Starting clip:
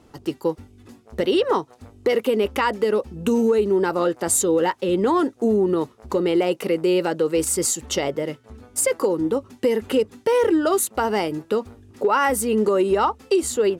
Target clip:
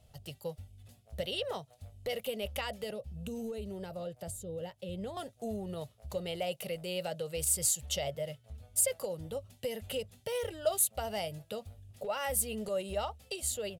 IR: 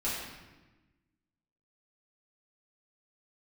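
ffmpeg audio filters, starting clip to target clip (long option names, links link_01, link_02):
-filter_complex "[0:a]firequalizer=gain_entry='entry(120,0);entry(310,-29);entry(620,-2);entry(950,-20);entry(3100,-3);entry(5700,-7);entry(11000,1)':delay=0.05:min_phase=1,asettb=1/sr,asplit=3[link_01][link_02][link_03];[link_01]atrim=end=2.904[link_04];[link_02]atrim=start=2.9:end=5.17,asetpts=PTS-STARTPTS,afade=type=in:duration=0.004:curve=qsin,afade=type=out:start_time=2.266:duration=0.004:curve=qsin,acrossover=split=490[link_05][link_06];[link_06]acompressor=threshold=-47dB:ratio=3[link_07];[link_05][link_07]amix=inputs=2:normalize=0[link_08];[link_03]atrim=start=5.166[link_09];[link_04][link_08]acrossfade=duration=0.004:curve1=hsin:curve2=qsin[link_10];[link_10][link_09]acrossfade=duration=0.004:curve1=qsin:curve2=hsin,volume=-3dB"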